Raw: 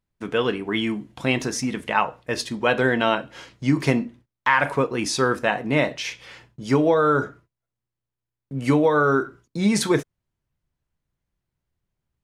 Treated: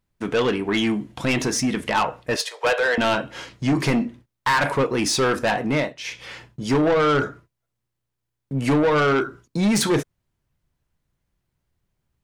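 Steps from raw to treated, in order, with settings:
0:02.36–0:02.98: Chebyshev high-pass filter 450 Hz, order 6
0:05.65–0:06.26: duck −16 dB, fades 0.30 s
soft clipping −20.5 dBFS, distortion −9 dB
level +5.5 dB

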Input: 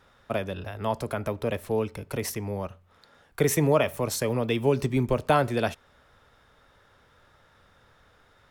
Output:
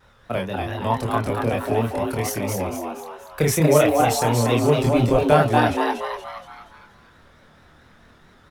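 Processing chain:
pitch vibrato 4.5 Hz 85 cents
multi-voice chorus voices 6, 0.35 Hz, delay 26 ms, depth 1.2 ms
echo with shifted repeats 236 ms, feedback 46%, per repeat +150 Hz, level −3.5 dB
level +7 dB

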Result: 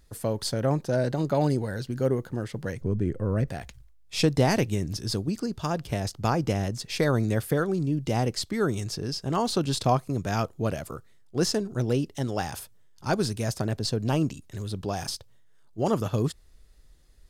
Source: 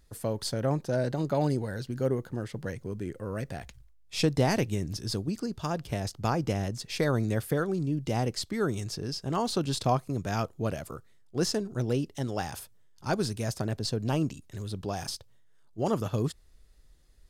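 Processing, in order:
0:02.81–0:03.48: spectral tilt −2.5 dB per octave
level +3 dB

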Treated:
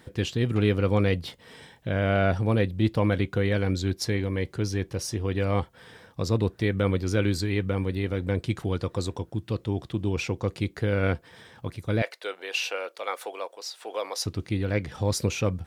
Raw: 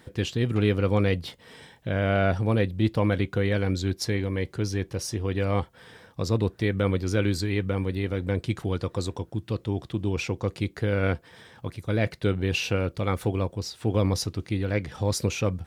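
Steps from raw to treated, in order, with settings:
0:12.02–0:14.26: high-pass filter 530 Hz 24 dB per octave

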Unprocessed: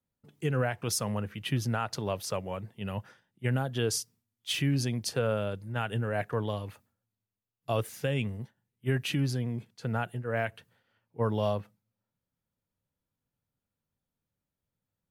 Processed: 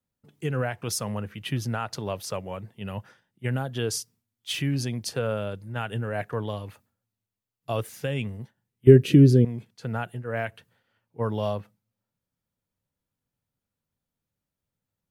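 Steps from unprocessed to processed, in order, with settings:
0:08.87–0:09.45: low shelf with overshoot 590 Hz +11.5 dB, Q 3
level +1 dB

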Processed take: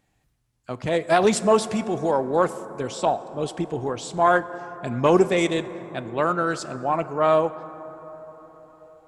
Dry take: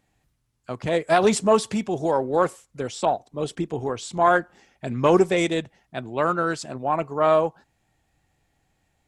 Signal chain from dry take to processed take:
dense smooth reverb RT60 4.7 s, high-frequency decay 0.3×, DRR 13.5 dB

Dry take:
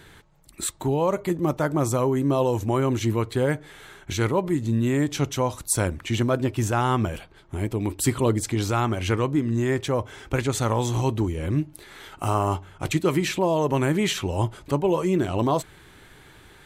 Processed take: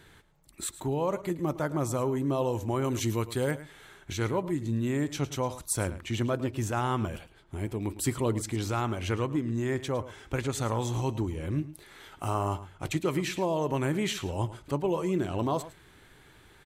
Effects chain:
0:02.84–0:03.51: high-shelf EQ 4,200 Hz +10.5 dB
on a send: single-tap delay 108 ms −15.5 dB
on the sum: level −6.5 dB

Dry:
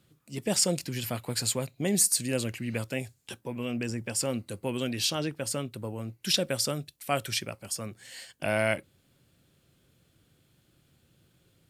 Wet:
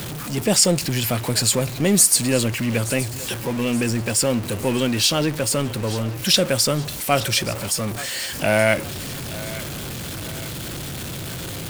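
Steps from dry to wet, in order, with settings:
converter with a step at zero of −33 dBFS
feedback echo with a high-pass in the loop 873 ms, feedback 49%, level −16 dB
level +8 dB

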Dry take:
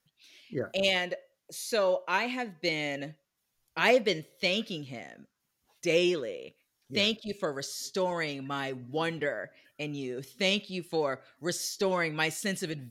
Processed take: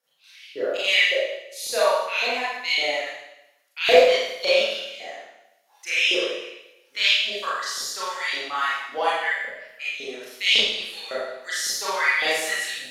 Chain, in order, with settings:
auto-filter high-pass saw up 1.8 Hz 480–3,800 Hz
four-comb reverb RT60 0.88 s, combs from 28 ms, DRR −9.5 dB
level −3 dB

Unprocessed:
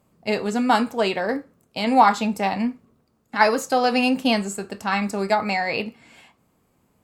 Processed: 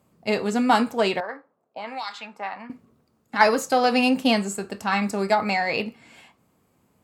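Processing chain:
0:01.20–0:02.70: envelope filter 640–4,500 Hz, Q 2, up, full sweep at −10.5 dBFS
harmonic generator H 4 −26 dB, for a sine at −2 dBFS
high-pass filter 58 Hz

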